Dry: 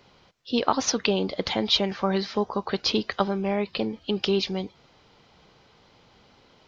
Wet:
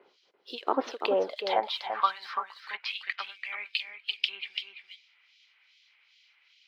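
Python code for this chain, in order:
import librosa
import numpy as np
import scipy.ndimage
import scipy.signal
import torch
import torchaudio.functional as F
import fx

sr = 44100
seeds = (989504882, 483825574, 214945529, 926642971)

p1 = fx.env_lowpass_down(x, sr, base_hz=1900.0, full_db=-20.5)
p2 = scipy.signal.sosfilt(scipy.signal.butter(2, 6400.0, 'lowpass', fs=sr, output='sos'), p1)
p3 = fx.tilt_shelf(p2, sr, db=-3.0, hz=970.0)
p4 = np.sign(p3) * np.maximum(np.abs(p3) - 10.0 ** (-47.5 / 20.0), 0.0)
p5 = p3 + F.gain(torch.from_numpy(p4), -5.5).numpy()
p6 = fx.filter_sweep_highpass(p5, sr, from_hz=380.0, to_hz=2300.0, start_s=0.79, end_s=2.83, q=3.5)
p7 = fx.harmonic_tremolo(p6, sr, hz=2.5, depth_pct=100, crossover_hz=2500.0)
p8 = p7 + 10.0 ** (-7.5 / 20.0) * np.pad(p7, (int(338 * sr / 1000.0), 0))[:len(p7)]
y = F.gain(torch.from_numpy(p8), -4.5).numpy()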